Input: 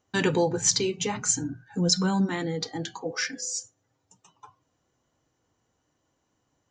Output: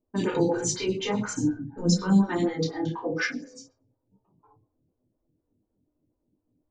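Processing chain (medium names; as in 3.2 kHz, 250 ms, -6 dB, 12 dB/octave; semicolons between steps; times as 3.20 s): 1.69–2.13 s: bass shelf 110 Hz +11.5 dB; level-controlled noise filter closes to 320 Hz, open at -23 dBFS; peak limiter -19.5 dBFS, peak gain reduction 10.5 dB; simulated room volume 290 m³, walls furnished, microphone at 2.7 m; lamp-driven phase shifter 4.1 Hz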